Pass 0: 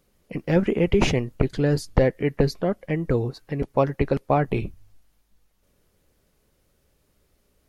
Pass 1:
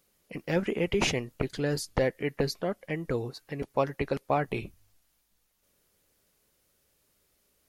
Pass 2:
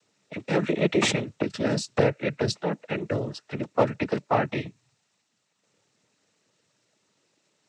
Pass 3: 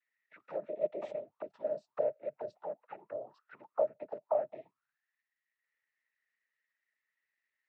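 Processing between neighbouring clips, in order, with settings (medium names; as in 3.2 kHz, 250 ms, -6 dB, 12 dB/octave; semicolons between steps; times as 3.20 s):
tilt EQ +2 dB/octave; trim -4.5 dB
noise-vocoded speech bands 12; trim +4.5 dB
auto-wah 610–1900 Hz, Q 12, down, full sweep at -23 dBFS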